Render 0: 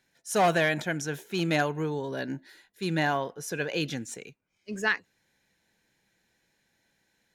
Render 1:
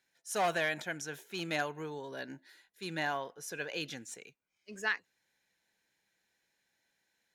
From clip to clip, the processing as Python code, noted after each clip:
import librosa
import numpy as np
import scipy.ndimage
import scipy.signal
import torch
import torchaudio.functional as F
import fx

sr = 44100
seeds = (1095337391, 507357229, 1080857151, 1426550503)

y = fx.low_shelf(x, sr, hz=360.0, db=-10.5)
y = y * librosa.db_to_amplitude(-5.5)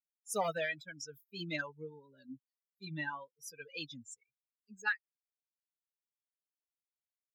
y = fx.bin_expand(x, sr, power=3.0)
y = fx.notch_comb(y, sr, f0_hz=360.0)
y = fx.vibrato(y, sr, rate_hz=1.6, depth_cents=46.0)
y = y * librosa.db_to_amplitude(3.5)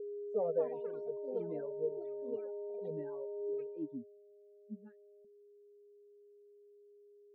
y = x + 10.0 ** (-44.0 / 20.0) * np.sin(2.0 * np.pi * 410.0 * np.arange(len(x)) / sr)
y = fx.echo_pitch(y, sr, ms=342, semitones=7, count=2, db_per_echo=-3.0)
y = fx.filter_sweep_lowpass(y, sr, from_hz=480.0, to_hz=220.0, start_s=3.34, end_s=4.23, q=7.6)
y = y * librosa.db_to_amplitude(-6.5)